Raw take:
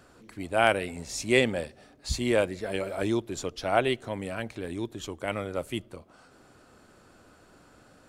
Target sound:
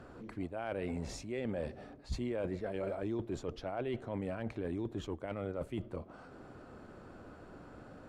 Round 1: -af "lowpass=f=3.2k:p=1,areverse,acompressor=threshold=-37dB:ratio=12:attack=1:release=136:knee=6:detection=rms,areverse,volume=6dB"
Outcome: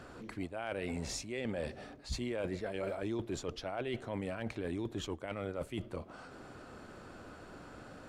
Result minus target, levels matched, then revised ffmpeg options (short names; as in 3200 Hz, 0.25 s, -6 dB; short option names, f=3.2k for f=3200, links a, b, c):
4000 Hz band +7.0 dB
-af "lowpass=f=940:p=1,areverse,acompressor=threshold=-37dB:ratio=12:attack=1:release=136:knee=6:detection=rms,areverse,volume=6dB"